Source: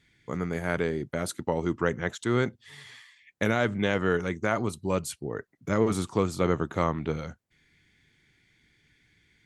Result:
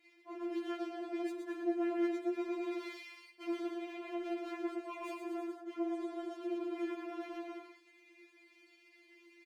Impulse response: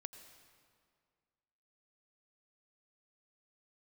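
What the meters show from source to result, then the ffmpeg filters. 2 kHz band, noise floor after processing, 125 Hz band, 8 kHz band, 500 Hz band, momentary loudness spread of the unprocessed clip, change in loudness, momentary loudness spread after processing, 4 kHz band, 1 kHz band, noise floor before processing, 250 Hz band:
-16.5 dB, -66 dBFS, under -40 dB, under -20 dB, -11.5 dB, 11 LU, -11.0 dB, 11 LU, -13.0 dB, -12.5 dB, -68 dBFS, -7.0 dB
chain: -filter_complex "[0:a]aeval=exprs='val(0)+0.00126*(sin(2*PI*50*n/s)+sin(2*PI*2*50*n/s)/2+sin(2*PI*3*50*n/s)/3+sin(2*PI*4*50*n/s)/4+sin(2*PI*5*50*n/s)/5)':c=same,asplit=2[a][b];[b]alimiter=limit=-18dB:level=0:latency=1,volume=2dB[c];[a][c]amix=inputs=2:normalize=0,asplit=3[d][e][f];[d]bandpass=f=300:t=q:w=8,volume=0dB[g];[e]bandpass=f=870:t=q:w=8,volume=-6dB[h];[f]bandpass=f=2.24k:t=q:w=8,volume=-9dB[i];[g][h][i]amix=inputs=3:normalize=0,aeval=exprs='max(val(0),0)':c=same,acontrast=83,highpass=f=180:w=0.5412,highpass=f=180:w=1.3066,aecho=1:1:120|228|325.2|412.7|491.4:0.631|0.398|0.251|0.158|0.1[j];[1:a]atrim=start_sample=2205,afade=t=out:st=0.18:d=0.01,atrim=end_sample=8379,asetrate=83790,aresample=44100[k];[j][k]afir=irnorm=-1:irlink=0,areverse,acompressor=threshold=-52dB:ratio=8,areverse,afftfilt=real='re*4*eq(mod(b,16),0)':imag='im*4*eq(mod(b,16),0)':win_size=2048:overlap=0.75,volume=17.5dB"

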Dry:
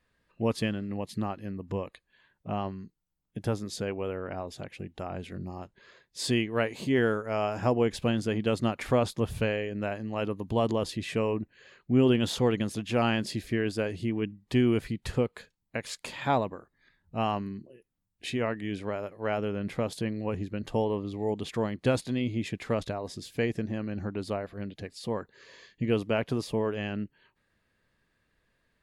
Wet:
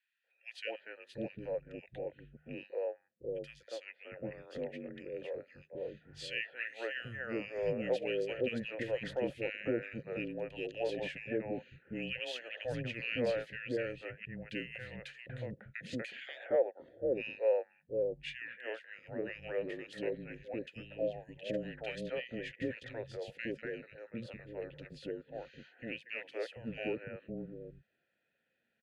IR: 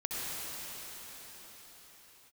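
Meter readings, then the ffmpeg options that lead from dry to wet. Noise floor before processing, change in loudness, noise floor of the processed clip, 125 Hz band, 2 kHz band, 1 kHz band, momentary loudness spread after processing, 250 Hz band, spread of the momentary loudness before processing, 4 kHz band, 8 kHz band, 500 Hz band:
-77 dBFS, -9.0 dB, -80 dBFS, -15.5 dB, -4.0 dB, -16.5 dB, 12 LU, -13.0 dB, 12 LU, -8.5 dB, under -15 dB, -6.0 dB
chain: -filter_complex "[0:a]afreqshift=-240,asplit=3[a][b][c];[a]bandpass=f=530:t=q:w=8,volume=0dB[d];[b]bandpass=f=1.84k:t=q:w=8,volume=-6dB[e];[c]bandpass=f=2.48k:t=q:w=8,volume=-9dB[f];[d][e][f]amix=inputs=3:normalize=0,acrossover=split=460|1700[g][h][i];[h]adelay=240[j];[g]adelay=750[k];[k][j][i]amix=inputs=3:normalize=0,volume=10dB"

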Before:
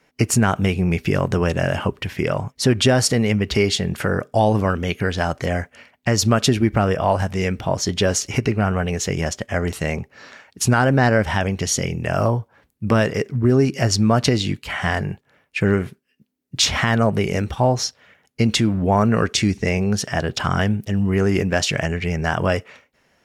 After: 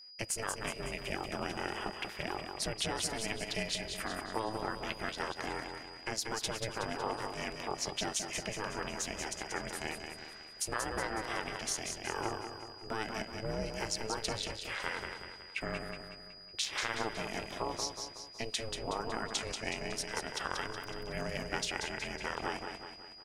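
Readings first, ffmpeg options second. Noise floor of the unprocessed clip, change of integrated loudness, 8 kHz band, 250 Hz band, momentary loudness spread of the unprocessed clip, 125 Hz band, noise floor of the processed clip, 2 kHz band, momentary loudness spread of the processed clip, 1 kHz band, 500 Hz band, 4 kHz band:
-65 dBFS, -17.5 dB, -12.5 dB, -23.0 dB, 8 LU, -27.0 dB, -51 dBFS, -13.5 dB, 7 LU, -14.0 dB, -18.5 dB, -12.5 dB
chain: -af "highpass=f=690:p=1,equalizer=f=9.2k:t=o:w=0.21:g=7.5,acompressor=threshold=-20dB:ratio=6,aeval=exprs='val(0)*sin(2*PI*220*n/s)':c=same,aecho=1:1:185|370|555|740|925|1110:0.501|0.256|0.13|0.0665|0.0339|0.0173,tremolo=f=230:d=0.519,aeval=exprs='val(0)+0.00631*sin(2*PI*4900*n/s)':c=same,volume=-6.5dB"

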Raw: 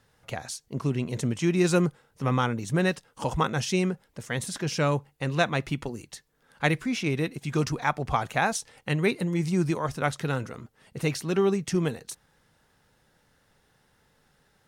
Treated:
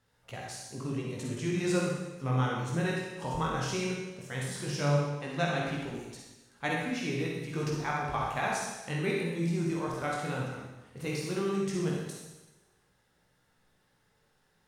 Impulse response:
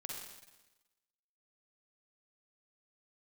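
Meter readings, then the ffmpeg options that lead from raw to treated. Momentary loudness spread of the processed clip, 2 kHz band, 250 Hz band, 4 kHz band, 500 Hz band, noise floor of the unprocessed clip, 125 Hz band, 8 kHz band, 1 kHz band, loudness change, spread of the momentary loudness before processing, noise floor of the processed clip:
11 LU, -5.0 dB, -5.5 dB, -5.0 dB, -5.0 dB, -67 dBFS, -4.5 dB, -5.0 dB, -4.5 dB, -5.0 dB, 13 LU, -71 dBFS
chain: -filter_complex "[0:a]flanger=delay=16.5:depth=7.7:speed=0.15[a];[1:a]atrim=start_sample=2205[b];[a][b]afir=irnorm=-1:irlink=0"

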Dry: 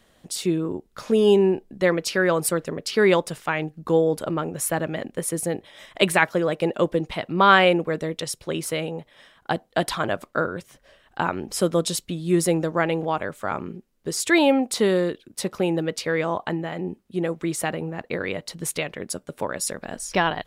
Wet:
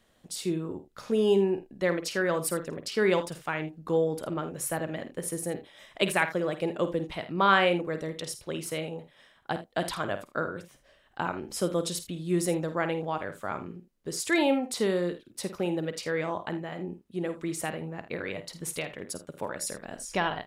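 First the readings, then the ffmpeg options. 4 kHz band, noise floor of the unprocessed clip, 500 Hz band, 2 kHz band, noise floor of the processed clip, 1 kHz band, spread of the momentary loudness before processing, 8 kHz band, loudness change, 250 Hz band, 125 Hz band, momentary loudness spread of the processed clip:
-6.5 dB, -61 dBFS, -6.5 dB, -6.5 dB, -63 dBFS, -6.5 dB, 12 LU, -6.5 dB, -6.5 dB, -6.5 dB, -6.5 dB, 12 LU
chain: -af "aecho=1:1:51|80:0.282|0.158,volume=-7dB"

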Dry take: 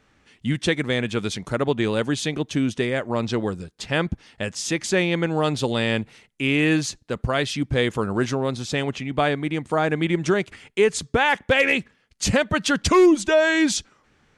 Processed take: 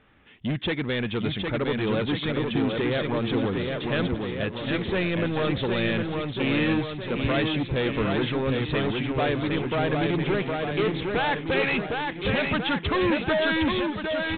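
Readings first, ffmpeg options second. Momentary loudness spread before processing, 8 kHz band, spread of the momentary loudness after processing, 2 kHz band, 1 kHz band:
9 LU, under -40 dB, 4 LU, -3.5 dB, -3.0 dB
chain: -af "aresample=8000,asoftclip=type=tanh:threshold=-23.5dB,aresample=44100,aecho=1:1:760|1444|2060|2614|3112:0.631|0.398|0.251|0.158|0.1,volume=1.5dB"

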